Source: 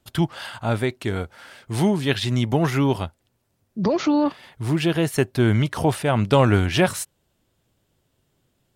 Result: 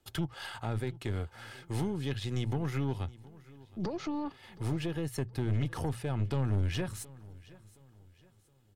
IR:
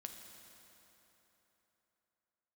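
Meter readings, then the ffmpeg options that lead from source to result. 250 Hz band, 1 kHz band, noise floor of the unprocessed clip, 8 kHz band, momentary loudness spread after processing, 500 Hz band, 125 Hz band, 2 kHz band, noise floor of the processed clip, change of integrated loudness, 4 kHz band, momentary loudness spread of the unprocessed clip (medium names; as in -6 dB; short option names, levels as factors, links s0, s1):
-14.5 dB, -16.5 dB, -70 dBFS, -13.5 dB, 15 LU, -16.5 dB, -9.5 dB, -16.0 dB, -64 dBFS, -13.0 dB, -14.5 dB, 12 LU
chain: -filter_complex "[0:a]bandreject=f=60:t=h:w=6,bandreject=f=120:t=h:w=6,aecho=1:1:2.4:0.4,acrossover=split=180[s0][s1];[s1]acompressor=threshold=0.0251:ratio=5[s2];[s0][s2]amix=inputs=2:normalize=0,aeval=exprs='(tanh(14.1*val(0)+0.5)-tanh(0.5))/14.1':c=same,aecho=1:1:720|1440|2160:0.0891|0.0348|0.0136,volume=0.708"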